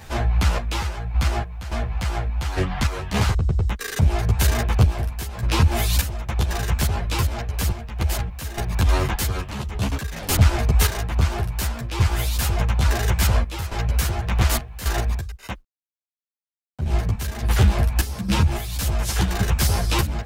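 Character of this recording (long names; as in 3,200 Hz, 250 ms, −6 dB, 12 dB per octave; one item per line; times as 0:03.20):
sample-and-hold tremolo, depth 80%
a quantiser's noise floor 12 bits, dither none
a shimmering, thickened sound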